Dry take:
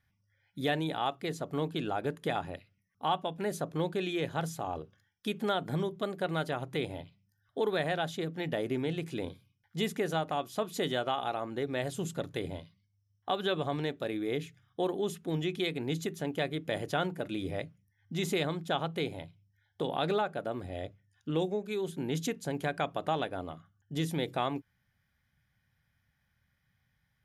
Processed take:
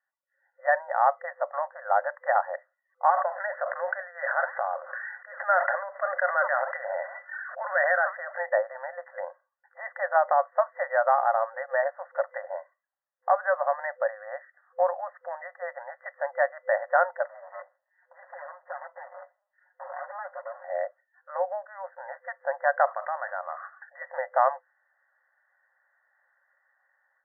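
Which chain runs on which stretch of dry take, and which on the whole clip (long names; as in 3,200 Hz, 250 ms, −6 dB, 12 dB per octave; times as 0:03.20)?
0:03.10–0:08.38: loudspeaker in its box 410–5,200 Hz, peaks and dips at 900 Hz −5 dB, 1,500 Hz +6 dB, 2,100 Hz +7 dB, 4,400 Hz +7 dB + flanger 1.9 Hz, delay 0.1 ms, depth 5.4 ms, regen +89% + level that may fall only so fast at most 21 dB per second
0:17.26–0:20.64: lower of the sound and its delayed copy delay 5.5 ms + downward compressor 2.5 to 1, threshold −49 dBFS
0:22.87–0:24.02: guitar amp tone stack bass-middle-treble 10-0-10 + envelope flattener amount 70%
whole clip: automatic gain control gain up to 15.5 dB; brick-wall band-pass 510–2,000 Hz; level −3.5 dB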